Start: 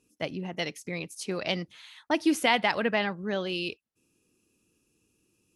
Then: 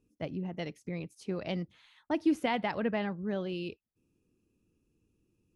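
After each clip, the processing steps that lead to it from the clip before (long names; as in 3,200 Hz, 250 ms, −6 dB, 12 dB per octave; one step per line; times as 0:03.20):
spectral tilt −3 dB per octave
level −7.5 dB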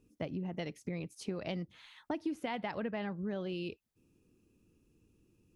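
downward compressor 4 to 1, threshold −41 dBFS, peak gain reduction 16 dB
level +5 dB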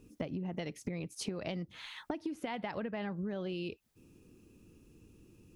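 downward compressor 6 to 1, threshold −45 dBFS, peak gain reduction 13 dB
level +9.5 dB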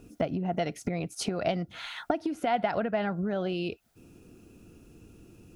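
hollow resonant body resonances 700/1,400 Hz, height 12 dB, ringing for 30 ms
level +6.5 dB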